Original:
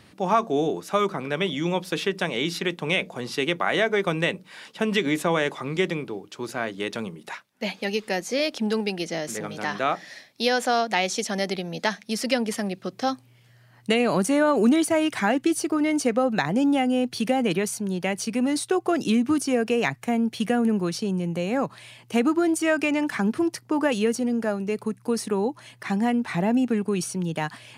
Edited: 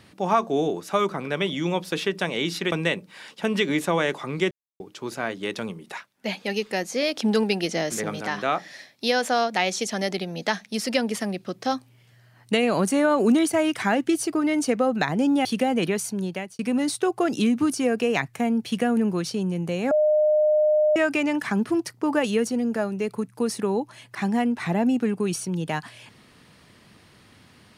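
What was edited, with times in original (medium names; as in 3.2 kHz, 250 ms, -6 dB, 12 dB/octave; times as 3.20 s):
2.72–4.09 s: delete
5.88–6.17 s: mute
8.54–9.58 s: gain +3.5 dB
16.82–17.13 s: delete
17.90–18.27 s: fade out
21.59–22.64 s: bleep 609 Hz -16 dBFS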